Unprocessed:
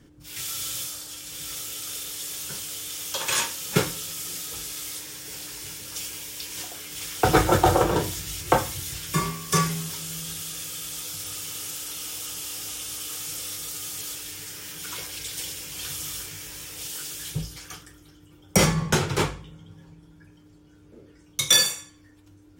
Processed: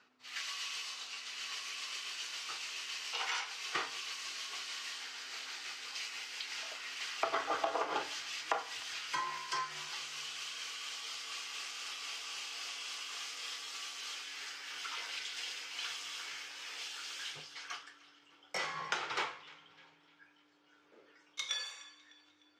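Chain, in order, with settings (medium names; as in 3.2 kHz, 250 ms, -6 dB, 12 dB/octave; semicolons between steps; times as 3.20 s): pitch bend over the whole clip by -3 st ending unshifted; high-pass 940 Hz 12 dB/octave; compression 16:1, threshold -31 dBFS, peak gain reduction 17.5 dB; distance through air 170 m; band-passed feedback delay 302 ms, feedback 50%, band-pass 2.9 kHz, level -18.5 dB; trim +2.5 dB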